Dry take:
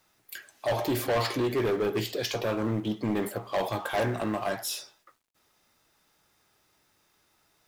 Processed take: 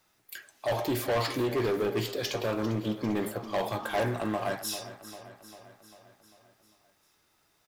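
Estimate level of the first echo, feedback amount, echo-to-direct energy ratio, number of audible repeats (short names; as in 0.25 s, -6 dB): -14.5 dB, 59%, -12.5 dB, 5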